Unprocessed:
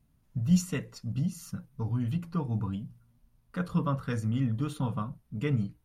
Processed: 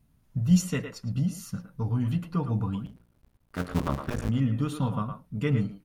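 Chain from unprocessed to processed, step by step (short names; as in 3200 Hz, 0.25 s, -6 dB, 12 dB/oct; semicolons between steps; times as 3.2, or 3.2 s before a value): 2.86–4.29 cycle switcher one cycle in 2, muted; speakerphone echo 0.11 s, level -7 dB; gain +3 dB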